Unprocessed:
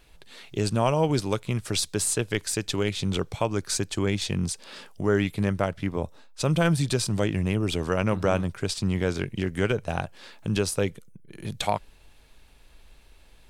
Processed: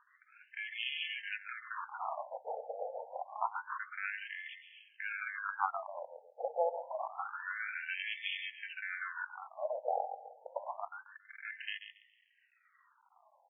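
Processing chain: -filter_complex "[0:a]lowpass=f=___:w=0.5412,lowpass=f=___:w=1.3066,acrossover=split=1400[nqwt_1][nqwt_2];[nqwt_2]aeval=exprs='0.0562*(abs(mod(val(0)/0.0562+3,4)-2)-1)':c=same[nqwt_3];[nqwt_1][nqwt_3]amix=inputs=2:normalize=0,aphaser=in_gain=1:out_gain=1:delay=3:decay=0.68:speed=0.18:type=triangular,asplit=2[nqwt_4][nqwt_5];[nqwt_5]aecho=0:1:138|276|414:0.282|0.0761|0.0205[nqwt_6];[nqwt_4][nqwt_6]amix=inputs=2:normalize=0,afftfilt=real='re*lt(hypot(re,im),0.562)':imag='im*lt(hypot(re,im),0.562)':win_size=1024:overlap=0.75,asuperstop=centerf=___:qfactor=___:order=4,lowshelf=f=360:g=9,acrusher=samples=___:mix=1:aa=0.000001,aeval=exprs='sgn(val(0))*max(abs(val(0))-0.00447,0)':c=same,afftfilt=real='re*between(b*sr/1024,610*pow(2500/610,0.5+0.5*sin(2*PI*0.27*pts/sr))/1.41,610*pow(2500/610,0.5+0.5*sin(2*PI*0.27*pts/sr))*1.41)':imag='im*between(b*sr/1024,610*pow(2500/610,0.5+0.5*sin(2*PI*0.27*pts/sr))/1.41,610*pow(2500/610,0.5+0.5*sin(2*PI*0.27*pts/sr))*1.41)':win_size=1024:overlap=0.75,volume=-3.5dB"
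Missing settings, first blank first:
8400, 8400, 5500, 6.4, 23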